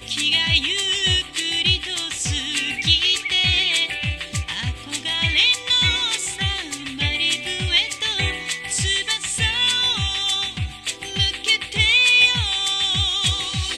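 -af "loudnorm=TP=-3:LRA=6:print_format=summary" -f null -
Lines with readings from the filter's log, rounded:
Input Integrated:    -18.4 LUFS
Input True Peak:      -2.3 dBTP
Input LRA:             3.2 LU
Input Threshold:     -28.4 LUFS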